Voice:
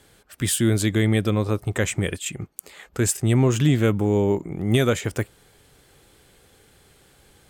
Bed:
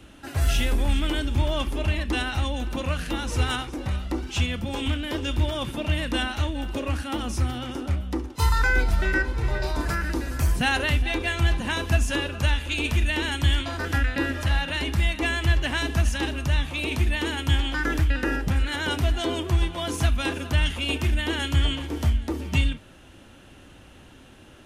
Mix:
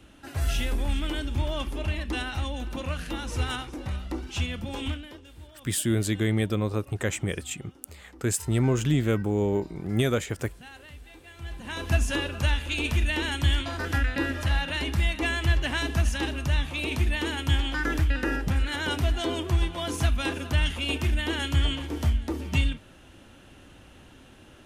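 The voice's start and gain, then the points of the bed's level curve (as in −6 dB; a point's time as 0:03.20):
5.25 s, −5.0 dB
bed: 0:04.89 −4.5 dB
0:05.29 −23.5 dB
0:11.26 −23.5 dB
0:11.92 −2 dB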